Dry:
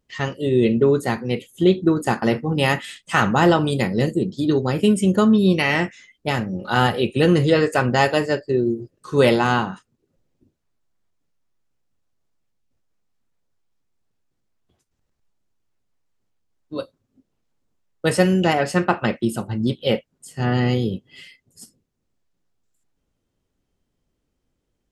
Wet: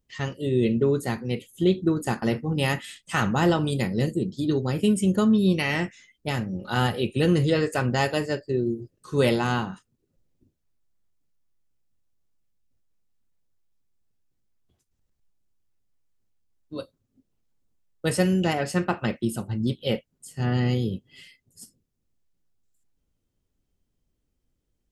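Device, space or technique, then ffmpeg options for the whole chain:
smiley-face EQ: -af "lowshelf=frequency=93:gain=6,equalizer=frequency=960:width_type=o:width=2.6:gain=-3.5,highshelf=frequency=9900:gain=6,volume=-4.5dB"

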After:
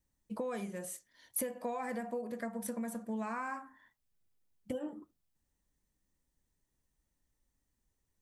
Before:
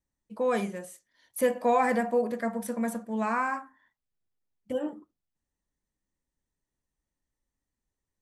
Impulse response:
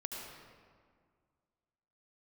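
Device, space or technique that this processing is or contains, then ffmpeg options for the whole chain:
ASMR close-microphone chain: -af "lowshelf=frequency=220:gain=4.5,acompressor=threshold=-37dB:ratio=10,highshelf=frequency=6200:gain=5.5,volume=1.5dB"

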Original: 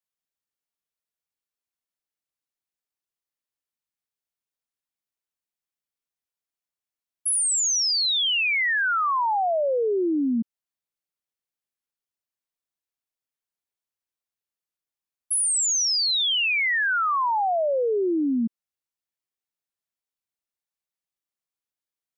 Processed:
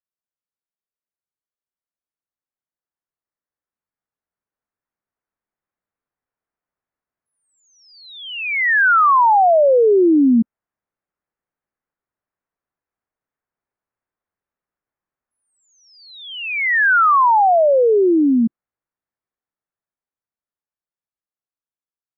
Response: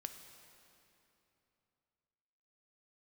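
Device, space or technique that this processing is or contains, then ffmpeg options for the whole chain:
action camera in a waterproof case: -af "lowpass=frequency=1800:width=0.5412,lowpass=frequency=1800:width=1.3066,dynaudnorm=framelen=900:gausssize=9:maxgain=15dB,volume=-4dB" -ar 32000 -c:a aac -b:a 64k

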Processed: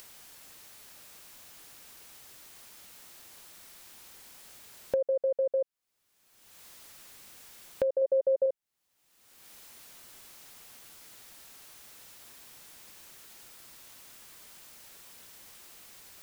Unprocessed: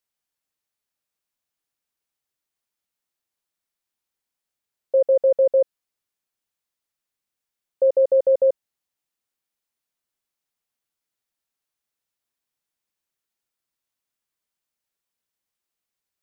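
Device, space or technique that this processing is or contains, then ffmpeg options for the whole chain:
upward and downward compression: -filter_complex "[0:a]acompressor=mode=upward:threshold=-33dB:ratio=2.5,acompressor=threshold=-32dB:ratio=6,asettb=1/sr,asplit=3[link_01][link_02][link_03];[link_01]atrim=end=8.014[link_04];[link_02]atrim=start=8.01:end=8.46,asetpts=PTS-STARTPTS,afade=type=in:duration=0.004:curve=qsin,afade=type=out:start_time=0.446:duration=0.004:curve=qsin,aecho=1:1:5.3:0.56,atrim=end_sample=19845[link_05];[link_03]atrim=start=8.456[link_06];[link_04][link_05]acrossfade=duration=0.004:curve1=hsin:curve2=qsin[link_07];[link_07][link_06]acrossfade=duration=0.004:curve1=qsin:curve2=hsin,volume=4.5dB"

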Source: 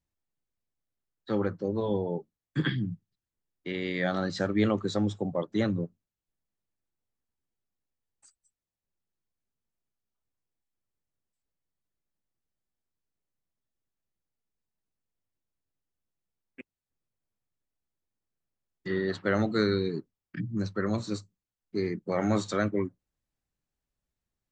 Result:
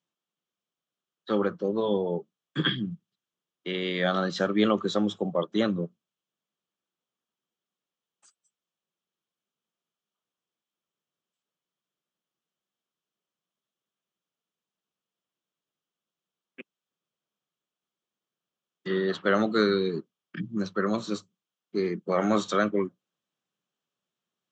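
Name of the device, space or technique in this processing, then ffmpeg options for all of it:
television speaker: -af "highpass=frequency=170:width=0.5412,highpass=frequency=170:width=1.3066,equalizer=frequency=270:width_type=q:width=4:gain=-6,equalizer=frequency=840:width_type=q:width=4:gain=-3,equalizer=frequency=1200:width_type=q:width=4:gain=5,equalizer=frequency=2000:width_type=q:width=4:gain=-5,equalizer=frequency=3200:width_type=q:width=4:gain=8,equalizer=frequency=4600:width_type=q:width=4:gain=-5,lowpass=frequency=7000:width=0.5412,lowpass=frequency=7000:width=1.3066,volume=4dB"

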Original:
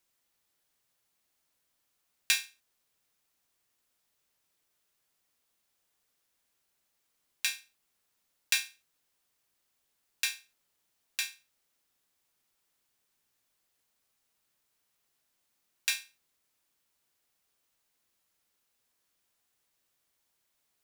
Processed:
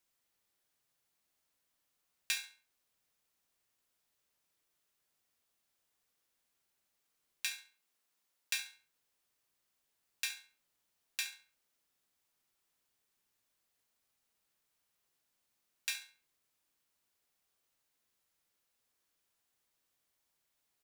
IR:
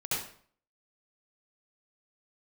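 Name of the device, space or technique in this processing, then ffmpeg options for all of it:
clipper into limiter: -filter_complex "[0:a]asettb=1/sr,asplit=3[link_01][link_02][link_03];[link_01]atrim=end=7.494[link_04];[link_02]atrim=start=7.49:end=8.54,asetpts=PTS-STARTPTS,afade=type=in:duration=0.004:curve=qsin,afade=type=out:start_time=1.046:duration=0.004:curve=qsin,highpass=frequency=280:poles=1[link_05];[link_03]atrim=start=8.536[link_06];[link_04][link_05]acrossfade=duration=0.004:curve1=hsin:curve2=qsin[link_07];[link_07][link_06]acrossfade=duration=0.004:curve1=qsin:curve2=hsin,asoftclip=type=hard:threshold=-6.5dB,alimiter=limit=-11dB:level=0:latency=1:release=444,asplit=2[link_08][link_09];[link_09]adelay=69,lowpass=frequency=2700:poles=1,volume=-7.5dB,asplit=2[link_10][link_11];[link_11]adelay=69,lowpass=frequency=2700:poles=1,volume=0.37,asplit=2[link_12][link_13];[link_13]adelay=69,lowpass=frequency=2700:poles=1,volume=0.37,asplit=2[link_14][link_15];[link_15]adelay=69,lowpass=frequency=2700:poles=1,volume=0.37[link_16];[link_08][link_10][link_12][link_14][link_16]amix=inputs=5:normalize=0,volume=-4dB"

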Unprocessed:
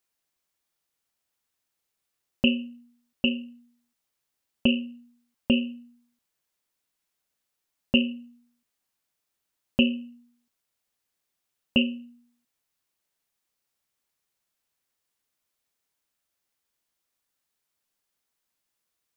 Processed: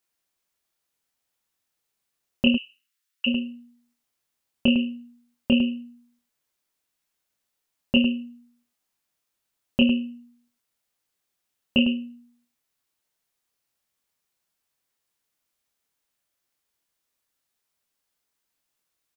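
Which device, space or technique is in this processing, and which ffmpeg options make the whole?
slapback doubling: -filter_complex "[0:a]asplit=3[link_01][link_02][link_03];[link_02]adelay=25,volume=-6.5dB[link_04];[link_03]adelay=104,volume=-8.5dB[link_05];[link_01][link_04][link_05]amix=inputs=3:normalize=0,asplit=3[link_06][link_07][link_08];[link_06]afade=type=out:start_time=2.56:duration=0.02[link_09];[link_07]highpass=frequency=1300:width=0.5412,highpass=frequency=1300:width=1.3066,afade=type=in:start_time=2.56:duration=0.02,afade=type=out:start_time=3.26:duration=0.02[link_10];[link_08]afade=type=in:start_time=3.26:duration=0.02[link_11];[link_09][link_10][link_11]amix=inputs=3:normalize=0"

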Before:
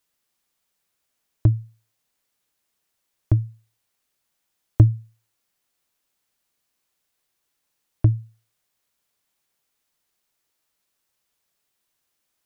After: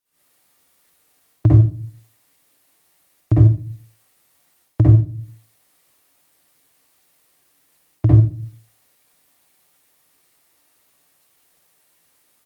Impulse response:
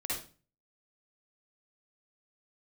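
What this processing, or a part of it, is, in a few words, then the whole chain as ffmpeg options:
far-field microphone of a smart speaker: -filter_complex "[1:a]atrim=start_sample=2205[link_01];[0:a][link_01]afir=irnorm=-1:irlink=0,highpass=90,dynaudnorm=framelen=110:gausssize=3:maxgain=15dB,volume=-1dB" -ar 48000 -c:a libopus -b:a 24k

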